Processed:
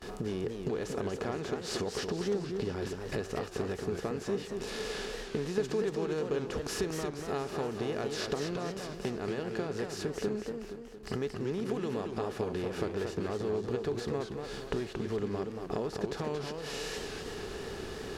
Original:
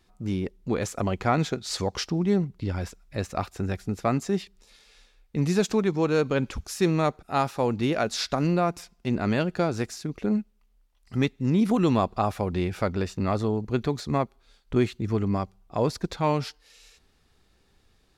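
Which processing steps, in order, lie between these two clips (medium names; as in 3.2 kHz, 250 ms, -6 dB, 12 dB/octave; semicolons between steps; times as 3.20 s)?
spectral levelling over time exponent 0.6; gate with hold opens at -35 dBFS; compression 16:1, threshold -34 dBFS, peak gain reduction 20.5 dB; small resonant body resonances 420/1700/2900 Hz, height 12 dB, ringing for 50 ms; modulated delay 233 ms, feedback 50%, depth 184 cents, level -5.5 dB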